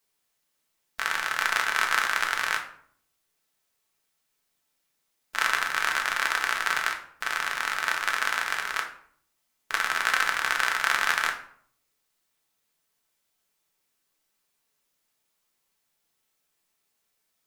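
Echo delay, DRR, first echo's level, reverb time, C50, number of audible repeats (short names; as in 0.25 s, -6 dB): none, 2.0 dB, none, 0.60 s, 9.0 dB, none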